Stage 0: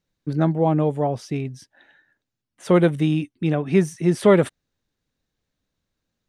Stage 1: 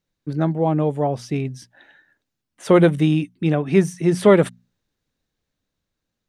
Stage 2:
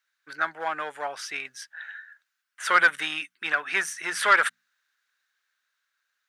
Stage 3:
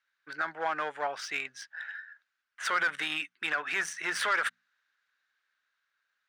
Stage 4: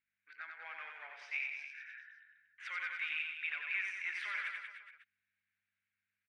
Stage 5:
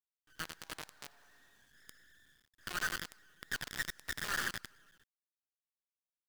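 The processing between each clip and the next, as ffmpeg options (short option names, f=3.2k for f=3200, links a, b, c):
-af "bandreject=f=60:t=h:w=6,bandreject=f=120:t=h:w=6,bandreject=f=180:t=h:w=6,bandreject=f=240:t=h:w=6,dynaudnorm=f=370:g=7:m=11.5dB,volume=-1dB"
-filter_complex "[0:a]asplit=2[a][b];[b]asoftclip=type=hard:threshold=-13dB,volume=-6.5dB[c];[a][c]amix=inputs=2:normalize=0,highpass=f=1.5k:t=q:w=4.1,asoftclip=type=tanh:threshold=-6.5dB,volume=-1dB"
-af "alimiter=limit=-19.5dB:level=0:latency=1:release=46,adynamicsmooth=sensitivity=5:basefreq=4.9k"
-filter_complex "[0:a]aeval=exprs='val(0)+0.00112*(sin(2*PI*50*n/s)+sin(2*PI*2*50*n/s)/2+sin(2*PI*3*50*n/s)/3+sin(2*PI*4*50*n/s)/4+sin(2*PI*5*50*n/s)/5)':c=same,bandpass=f=2.3k:t=q:w=5.2:csg=0,asplit=2[a][b];[b]aecho=0:1:90|189|297.9|417.7|549.5:0.631|0.398|0.251|0.158|0.1[c];[a][c]amix=inputs=2:normalize=0,volume=-2.5dB"
-af "afftfilt=real='re*(1-between(b*sr/4096,1900,5800))':imag='im*(1-between(b*sr/4096,1900,5800))':win_size=4096:overlap=0.75,acrusher=bits=8:dc=4:mix=0:aa=0.000001,aeval=exprs='0.0237*(cos(1*acos(clip(val(0)/0.0237,-1,1)))-cos(1*PI/2))+0.00473*(cos(3*acos(clip(val(0)/0.0237,-1,1)))-cos(3*PI/2))+0.00188*(cos(8*acos(clip(val(0)/0.0237,-1,1)))-cos(8*PI/2))':c=same,volume=10.5dB"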